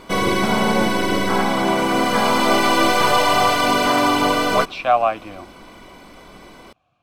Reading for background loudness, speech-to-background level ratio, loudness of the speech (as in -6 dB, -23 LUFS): -17.5 LUFS, -4.0 dB, -21.5 LUFS